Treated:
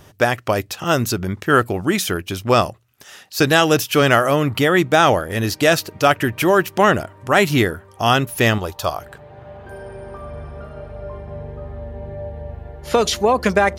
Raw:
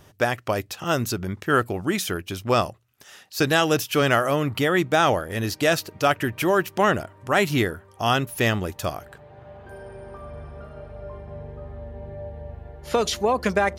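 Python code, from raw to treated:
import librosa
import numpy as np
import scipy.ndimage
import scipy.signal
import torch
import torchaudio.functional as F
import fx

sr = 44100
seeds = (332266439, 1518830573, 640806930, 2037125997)

y = fx.graphic_eq_10(x, sr, hz=(125, 250, 1000, 2000, 4000, 8000), db=(-5, -9, 6, -8, 5, -4), at=(8.58, 8.99))
y = y * 10.0 ** (5.5 / 20.0)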